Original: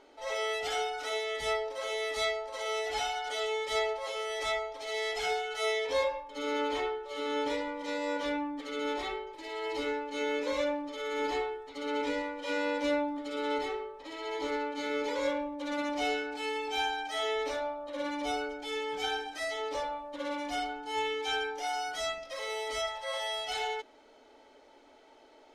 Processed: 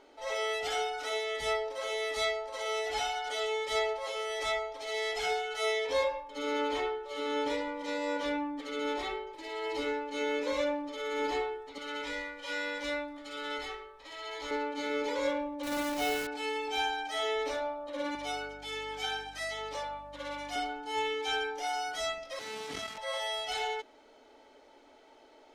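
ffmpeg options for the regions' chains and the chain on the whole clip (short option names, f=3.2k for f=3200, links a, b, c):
-filter_complex "[0:a]asettb=1/sr,asplit=3[a][b][c];[a]atrim=end=11.784[d];[b]atrim=start=11.78:end=14.51,asetpts=PTS-STARTPTS,afade=t=in:d=0.004:c=qsin,afade=t=out:st=2.726:d=0.004:c=qsin,equalizer=f=320:w=0.72:g=-11.5,asplit=2[e][f];[f]adelay=20,volume=-6.5dB[g];[e][g]amix=inputs=2:normalize=0,atrim=end_sample=120393[h];[c]atrim=start=14.506[i];[d][h]acrossfade=d=0.004:c1=hsin:c2=qsin[j];[j][i]acrossfade=d=0.004:c1=qsin:c2=hsin,asettb=1/sr,asplit=3[k][l][m];[k]atrim=end=15.634[n];[l]atrim=start=15.63:end=16.27,asetpts=PTS-STARTPTS,afade=t=in:d=0.004:c=qsin,afade=t=out:st=0.636:d=0.004:c=qsin,aeval=exprs='val(0)+0.00112*(sin(2*PI*60*n/s)+sin(2*PI*2*60*n/s)/2+sin(2*PI*3*60*n/s)/3+sin(2*PI*4*60*n/s)/4+sin(2*PI*5*60*n/s)/5)':c=same,acrusher=bits=7:dc=4:mix=0:aa=0.000001[o];[m]atrim=start=16.266[p];[n][o]acrossfade=d=0.004:c1=hsin:c2=qsin[q];[q][p]acrossfade=d=0.004:c1=qsin:c2=hsin,asettb=1/sr,asplit=3[r][s][t];[r]atrim=end=18.154[u];[s]atrim=start=18.15:end=20.56,asetpts=PTS-STARTPTS,afade=t=in:d=0.004:c=qsin,afade=t=out:st=2.406:d=0.004:c=qsin,highpass=f=760:p=1,aeval=exprs='val(0)+0.00178*(sin(2*PI*50*n/s)+sin(2*PI*2*50*n/s)/2+sin(2*PI*3*50*n/s)/3+sin(2*PI*4*50*n/s)/4+sin(2*PI*5*50*n/s)/5)':c=same[v];[t]atrim=start=20.556[w];[u][v]acrossfade=d=0.004:c1=hsin:c2=qsin[x];[x][w]acrossfade=d=0.004:c1=qsin:c2=hsin,asettb=1/sr,asplit=3[y][z][aa];[y]atrim=end=22.394[ab];[z]atrim=start=22.39:end=22.98,asetpts=PTS-STARTPTS,afade=t=in:d=0.004:c=qsin,afade=t=out:st=0.586:d=0.004:c=qsin,lowshelf=f=370:t=q:w=3:g=14,acrusher=bits=4:dc=4:mix=0:aa=0.000001,highpass=110,lowpass=7.4k[ac];[aa]atrim=start=22.976[ad];[ab][ac]acrossfade=d=0.004:c1=hsin:c2=qsin[ae];[ae][ad]acrossfade=d=0.004:c1=qsin:c2=hsin"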